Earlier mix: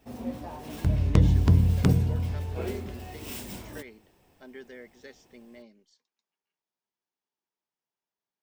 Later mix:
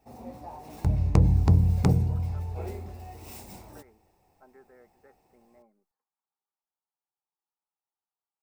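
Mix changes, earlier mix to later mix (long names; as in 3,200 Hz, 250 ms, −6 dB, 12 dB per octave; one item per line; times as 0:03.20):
speech: add transistor ladder low-pass 1,500 Hz, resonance 60%
first sound −5.5 dB
master: add thirty-one-band graphic EQ 250 Hz −5 dB, 800 Hz +10 dB, 1,600 Hz −6 dB, 3,150 Hz −10 dB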